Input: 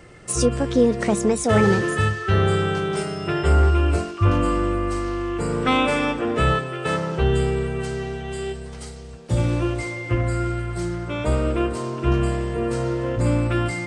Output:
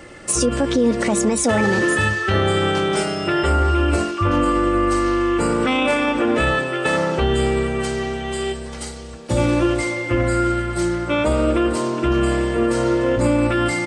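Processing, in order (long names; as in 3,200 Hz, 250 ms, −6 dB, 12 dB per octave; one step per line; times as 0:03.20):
low-shelf EQ 120 Hz −8 dB
comb filter 3.5 ms, depth 45%
brickwall limiter −16.5 dBFS, peak gain reduction 9 dB
level +7 dB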